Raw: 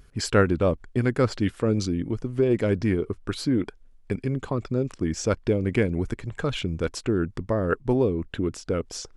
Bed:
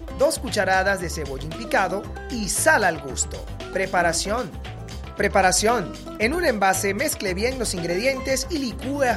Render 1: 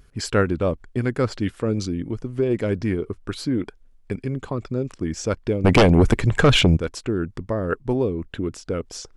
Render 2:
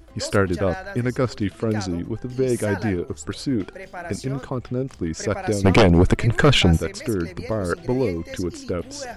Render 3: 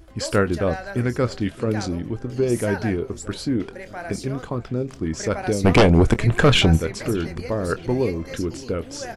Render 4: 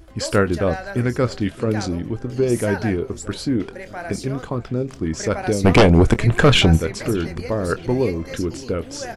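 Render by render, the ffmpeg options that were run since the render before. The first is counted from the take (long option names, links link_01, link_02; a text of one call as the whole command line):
ffmpeg -i in.wav -filter_complex "[0:a]asettb=1/sr,asplit=3[link_01][link_02][link_03];[link_01]atrim=end=5.644[link_04];[link_02]atrim=start=5.64:end=6.77,asetpts=PTS-STARTPTS,afade=type=in:duration=0.004:curve=qsin,afade=type=out:start_time=1.126:duration=0.004:curve=qsin,aeval=exprs='0.376*sin(PI/2*3.55*val(0)/0.376)':channel_layout=same[link_05];[link_03]atrim=start=6.766[link_06];[link_04][link_05]acrossfade=duration=0.004:curve1=hsin:curve2=qsin[link_07];[link_07][link_06]acrossfade=duration=0.004:curve1=qsin:curve2=hsin" out.wav
ffmpeg -i in.wav -i bed.wav -filter_complex "[1:a]volume=-14dB[link_01];[0:a][link_01]amix=inputs=2:normalize=0" out.wav
ffmpeg -i in.wav -filter_complex "[0:a]asplit=2[link_01][link_02];[link_02]adelay=25,volume=-13dB[link_03];[link_01][link_03]amix=inputs=2:normalize=0,asplit=2[link_04][link_05];[link_05]adelay=619,lowpass=frequency=2500:poles=1,volume=-20dB,asplit=2[link_06][link_07];[link_07]adelay=619,lowpass=frequency=2500:poles=1,volume=0.53,asplit=2[link_08][link_09];[link_09]adelay=619,lowpass=frequency=2500:poles=1,volume=0.53,asplit=2[link_10][link_11];[link_11]adelay=619,lowpass=frequency=2500:poles=1,volume=0.53[link_12];[link_04][link_06][link_08][link_10][link_12]amix=inputs=5:normalize=0" out.wav
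ffmpeg -i in.wav -af "volume=2dB" out.wav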